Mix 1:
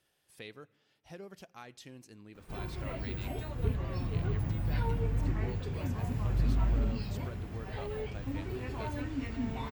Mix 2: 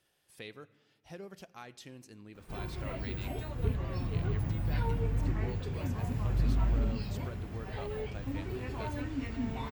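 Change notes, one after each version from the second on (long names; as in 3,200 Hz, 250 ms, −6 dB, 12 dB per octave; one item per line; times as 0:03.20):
speech: send +6.5 dB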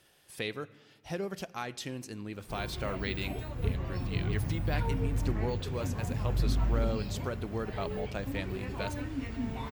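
speech +10.5 dB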